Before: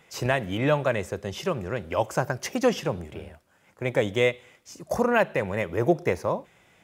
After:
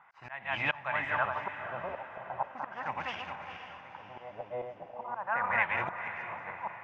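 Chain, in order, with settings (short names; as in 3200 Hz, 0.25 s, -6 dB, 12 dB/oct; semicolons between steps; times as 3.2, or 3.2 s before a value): regenerating reverse delay 0.21 s, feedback 50%, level -4 dB; resonant low shelf 620 Hz -11 dB, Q 3; auto swell 0.409 s; LFO low-pass sine 0.38 Hz 600–2600 Hz; on a send: diffused feedback echo 0.494 s, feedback 46%, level -10 dB; on the sum: gain -4.5 dB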